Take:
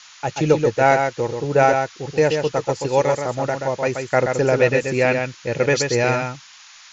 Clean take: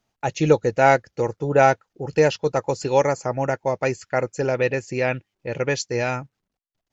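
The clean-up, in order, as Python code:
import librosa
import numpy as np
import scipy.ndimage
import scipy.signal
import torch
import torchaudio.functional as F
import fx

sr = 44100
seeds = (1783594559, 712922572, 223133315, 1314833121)

y = fx.noise_reduce(x, sr, print_start_s=6.41, print_end_s=6.91, reduce_db=30.0)
y = fx.fix_echo_inverse(y, sr, delay_ms=130, level_db=-5.5)
y = fx.gain(y, sr, db=fx.steps((0.0, 0.0), (4.04, -4.5)))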